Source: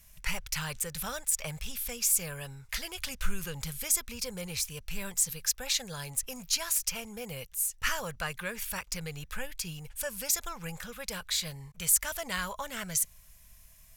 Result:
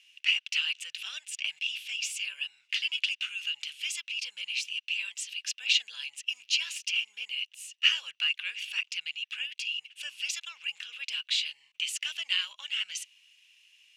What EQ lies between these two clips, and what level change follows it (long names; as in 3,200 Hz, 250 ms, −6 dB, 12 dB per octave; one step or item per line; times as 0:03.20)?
high-pass with resonance 2,800 Hz, resonance Q 10
high-frequency loss of the air 110 metres
0.0 dB